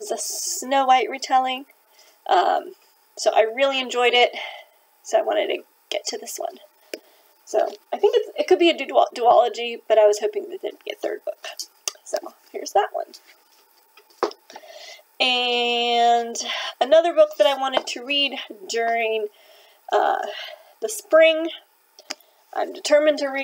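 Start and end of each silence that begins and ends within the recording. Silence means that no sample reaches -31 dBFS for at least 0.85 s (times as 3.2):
13.15–14.23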